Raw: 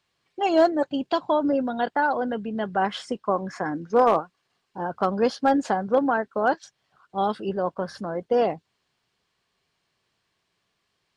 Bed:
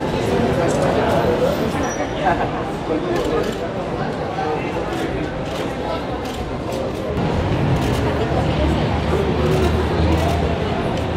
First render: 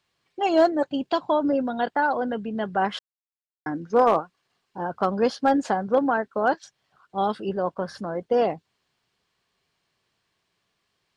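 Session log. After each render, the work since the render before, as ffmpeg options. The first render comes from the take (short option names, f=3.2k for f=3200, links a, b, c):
-filter_complex "[0:a]asplit=3[a][b][c];[a]atrim=end=2.99,asetpts=PTS-STARTPTS,afade=t=out:st=2.986:d=0.004:c=hsin[d];[b]atrim=start=2.99:end=3.66,asetpts=PTS-STARTPTS,volume=0[e];[c]atrim=start=3.66,asetpts=PTS-STARTPTS,afade=t=in:d=0.004:c=hsin[f];[d][e][f]concat=n=3:v=0:a=1"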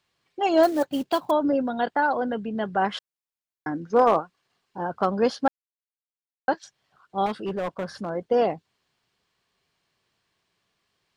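-filter_complex "[0:a]asettb=1/sr,asplit=3[a][b][c];[a]atrim=end=0.634[d];[b]atrim=start=0.63:end=1.31,asetpts=PTS-STARTPTS,afade=t=in:d=0.004:c=qsin,afade=t=out:st=0.676:d=0.004:c=qsin,acrusher=bits=5:mode=log:mix=0:aa=0.000001[e];[c]atrim=start=1.306[f];[d][e]acrossfade=d=0.004:c1=hsin:c2=qsin[g];[g][f]acrossfade=d=0.004:c1=qsin:c2=hsin,asettb=1/sr,asplit=3[h][i][j];[h]atrim=end=7.264[k];[i]atrim=start=7.26:end=8.1,asetpts=PTS-STARTPTS,afade=t=in:d=0.004:c=qsin,afade=t=out:st=0.836:d=0.004:c=qsin,volume=24dB,asoftclip=hard,volume=-24dB[l];[j]atrim=start=8.096[m];[k][l]acrossfade=d=0.004:c1=hsin:c2=qsin[n];[n][m]acrossfade=d=0.004:c1=qsin:c2=hsin,asplit=3[o][p][q];[o]atrim=end=5.48,asetpts=PTS-STARTPTS,afade=t=out:st=5.476:d=0.004:c=hsin[r];[p]atrim=start=5.48:end=6.48,asetpts=PTS-STARTPTS,volume=0[s];[q]atrim=start=6.48,asetpts=PTS-STARTPTS,afade=t=in:d=0.004:c=hsin[t];[r][s][t]concat=n=3:v=0:a=1"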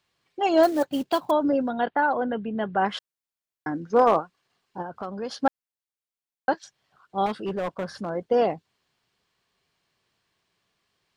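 -filter_complex "[0:a]asettb=1/sr,asplit=3[a][b][c];[a]atrim=end=1.714[d];[b]atrim=start=1.71:end=2.86,asetpts=PTS-STARTPTS,afade=t=in:d=0.004:c=qsin,afade=t=out:st=1.146:d=0.004:c=qsin,lowpass=f=3.5k:w=0.5412,lowpass=f=3.5k:w=1.3066[e];[c]atrim=start=2.856[f];[d][e]acrossfade=d=0.004:c1=hsin:c2=qsin[g];[g][f]acrossfade=d=0.004:c1=qsin:c2=hsin,asplit=3[h][i][j];[h]afade=t=out:st=4.81:d=0.02[k];[i]acompressor=threshold=-37dB:ratio=2:attack=3.2:release=140:knee=1:detection=peak,afade=t=in:st=4.81:d=0.02,afade=t=out:st=5.3:d=0.02[l];[j]afade=t=in:st=5.3:d=0.02[m];[k][l][m]amix=inputs=3:normalize=0"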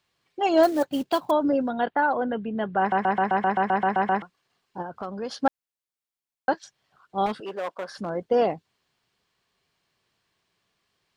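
-filter_complex "[0:a]asettb=1/sr,asplit=3[a][b][c];[a]atrim=end=7.404[d];[b]atrim=start=7.4:end=7.98,asetpts=PTS-STARTPTS,afade=t=in:d=0.004:c=qsin,afade=t=out:st=0.576:d=0.004:c=qsin,highpass=450[e];[c]atrim=start=7.976[f];[d][e]acrossfade=d=0.004:c1=hsin:c2=qsin[g];[g][f]acrossfade=d=0.004:c1=qsin:c2=hsin,asplit=12[h][i][j][k][l][m][n][o][p][q][r][s];[h]atrim=end=2.922[t];[i]atrim=start=2.788:end=2.922[u];[j]atrim=start=2.788:end=2.922[v];[k]atrim=start=2.788:end=2.922[w];[l]atrim=start=2.788:end=2.922[x];[m]atrim=start=2.788:end=2.922[y];[n]atrim=start=2.788:end=2.922[z];[o]atrim=start=2.788:end=2.922[aa];[p]atrim=start=2.788:end=2.922[ab];[q]atrim=start=2.788:end=2.922[ac];[r]atrim=start=2.788:end=2.922[ad];[s]atrim=start=4.218[ae];[t][u]acrossfade=d=0.004:c1=hsin:c2=hsin[af];[af][v]acrossfade=d=0.004:c1=hsin:c2=hsin[ag];[ag][w]acrossfade=d=0.004:c1=hsin:c2=hsin[ah];[ah][x]acrossfade=d=0.004:c1=hsin:c2=hsin[ai];[ai][y]acrossfade=d=0.004:c1=hsin:c2=hsin[aj];[aj][z]acrossfade=d=0.004:c1=hsin:c2=hsin[ak];[ak][aa]acrossfade=d=0.004:c1=hsin:c2=hsin[al];[al][ab]acrossfade=d=0.004:c1=hsin:c2=hsin[am];[am][ac]acrossfade=d=0.004:c1=hsin:c2=hsin[an];[an][ad]acrossfade=d=0.004:c1=hsin:c2=hsin[ao];[ao][ae]acrossfade=d=0.004:c1=hsin:c2=hsin"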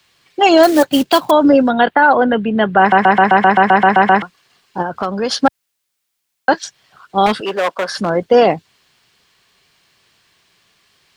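-filter_complex "[0:a]acrossover=split=100|620|1400[a][b][c][d];[d]acontrast=37[e];[a][b][c][e]amix=inputs=4:normalize=0,alimiter=level_in=13dB:limit=-1dB:release=50:level=0:latency=1"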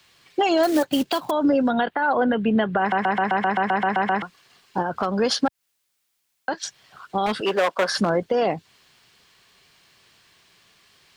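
-af "acompressor=threshold=-13dB:ratio=6,alimiter=limit=-11.5dB:level=0:latency=1:release=239"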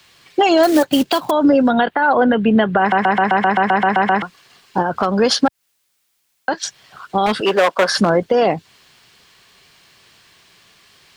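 -af "volume=6.5dB"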